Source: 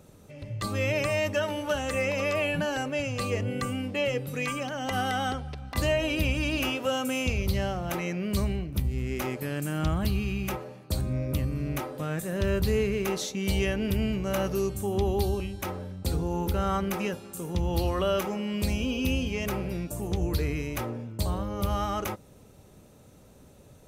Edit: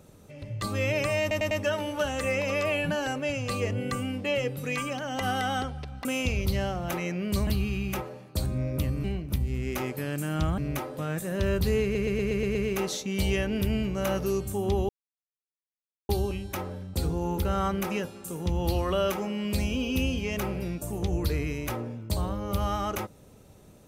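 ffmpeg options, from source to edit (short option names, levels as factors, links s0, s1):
-filter_complex "[0:a]asplit=15[s0][s1][s2][s3][s4][s5][s6][s7][s8][s9][s10][s11][s12][s13][s14];[s0]atrim=end=1.312[s15];[s1]atrim=start=1.208:end=1.312[s16];[s2]atrim=start=1.208:end=1.312[s17];[s3]atrim=start=1.208:end=5.752[s18];[s4]atrim=start=7.058:end=8.482[s19];[s5]atrim=start=10.018:end=11.592[s20];[s6]atrim=start=8.478:end=10.022[s21];[s7]atrim=start=11.588:end=12.962[s22];[s8]atrim=start=12.838:end=12.962[s23];[s9]atrim=start=12.838:end=12.962[s24];[s10]atrim=start=12.838:end=12.962[s25];[s11]atrim=start=12.838:end=12.962[s26];[s12]atrim=start=12.838:end=12.962[s27];[s13]atrim=start=12.838:end=15.18,asetpts=PTS-STARTPTS,afade=t=out:st=2.338:d=0.004:c=hsin,apad=pad_dur=1.2[s28];[s14]atrim=start=15.18,asetpts=PTS-STARTPTS,afade=t=in:d=0.004:c=hsin[s29];[s15][s16]acrossfade=d=0.004:c1=hsin:c2=hsin[s30];[s30][s17]acrossfade=d=0.004:c1=hsin:c2=hsin[s31];[s31][s18]acrossfade=d=0.004:c1=hsin:c2=hsin[s32];[s32][s19]acrossfade=d=0.004:c1=hsin:c2=hsin[s33];[s33][s20]acrossfade=d=0.004:c1=hsin:c2=hsin[s34];[s34][s21]acrossfade=d=0.004:c1=hsin:c2=hsin[s35];[s35][s22]acrossfade=d=0.004:c1=hsin:c2=hsin[s36];[s36][s23]acrossfade=d=0.004:c1=hsin:c2=hsin[s37];[s37][s24]acrossfade=d=0.004:c1=hsin:c2=hsin[s38];[s38][s25]acrossfade=d=0.004:c1=hsin:c2=hsin[s39];[s39][s26]acrossfade=d=0.004:c1=hsin:c2=hsin[s40];[s40][s27]acrossfade=d=0.004:c1=hsin:c2=hsin[s41];[s28][s29]concat=n=2:v=0:a=1[s42];[s41][s42]acrossfade=d=0.004:c1=hsin:c2=hsin"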